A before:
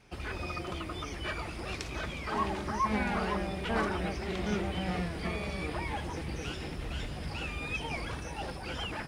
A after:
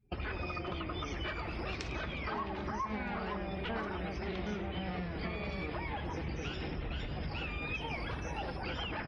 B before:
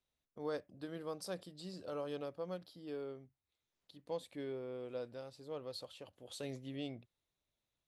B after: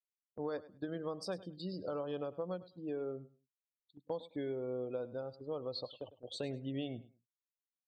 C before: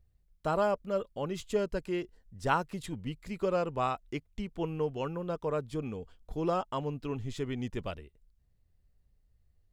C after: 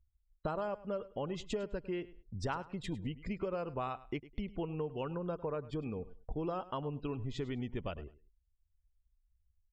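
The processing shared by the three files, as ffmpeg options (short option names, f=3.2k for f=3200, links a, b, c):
-af "afftdn=nr=28:nf=-53,agate=range=-12dB:threshold=-55dB:ratio=16:detection=peak,lowpass=5.5k,acompressor=threshold=-43dB:ratio=6,aecho=1:1:103|206:0.133|0.028,volume=7.5dB"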